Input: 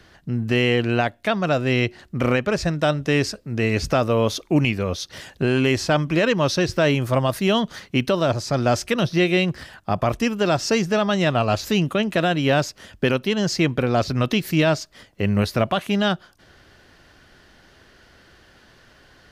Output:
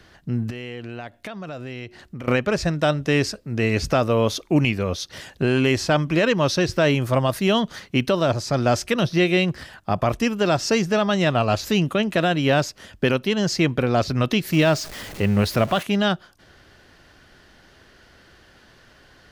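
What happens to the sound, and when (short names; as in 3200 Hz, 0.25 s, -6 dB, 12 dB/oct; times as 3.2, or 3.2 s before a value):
0.5–2.28 compressor, threshold -31 dBFS
14.52–15.83 zero-crossing step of -31.5 dBFS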